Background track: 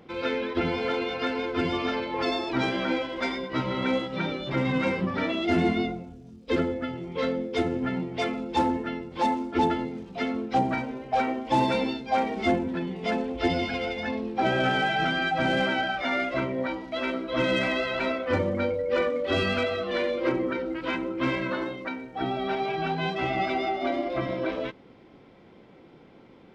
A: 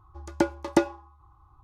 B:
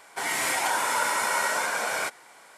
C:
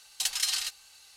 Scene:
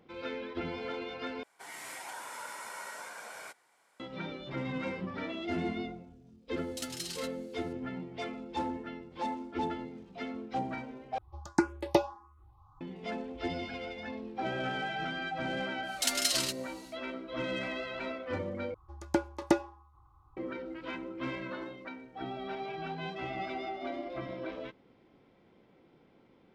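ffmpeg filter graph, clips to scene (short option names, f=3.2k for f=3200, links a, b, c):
-filter_complex "[3:a]asplit=2[a][b];[1:a]asplit=2[c][d];[0:a]volume=-10.5dB[e];[c]asplit=2[f][g];[g]afreqshift=1.6[h];[f][h]amix=inputs=2:normalize=1[i];[e]asplit=4[j][k][l][m];[j]atrim=end=1.434[n];[2:a]atrim=end=2.57,asetpts=PTS-STARTPTS,volume=-17.5dB[o];[k]atrim=start=3.996:end=11.184[p];[i]atrim=end=1.63[q];[l]atrim=start=12.806:end=18.744[r];[d]atrim=end=1.63,asetpts=PTS-STARTPTS,volume=-5dB[s];[m]atrim=start=20.366[t];[a]atrim=end=1.16,asetpts=PTS-STARTPTS,volume=-12dB,afade=t=in:d=0.004:c=hsin,afade=t=out:st=1.156:d=0.004:c=hsin,adelay=6570[u];[b]atrim=end=1.16,asetpts=PTS-STARTPTS,volume=-1dB,afade=t=in:d=0.1,afade=t=out:st=1.06:d=0.1,adelay=15820[v];[n][o]acrossfade=d=0.004:c1=hsin:c2=hsin[w];[w][p]acrossfade=d=0.004:c1=hsin:c2=hsin[x];[x][q]acrossfade=d=0.004:c1=hsin:c2=hsin[y];[y][r]acrossfade=d=0.004:c1=hsin:c2=hsin[z];[z][s]acrossfade=d=0.004:c1=hsin:c2=hsin[aa];[aa][t]acrossfade=d=0.004:c1=hsin:c2=hsin[ab];[ab][u][v]amix=inputs=3:normalize=0"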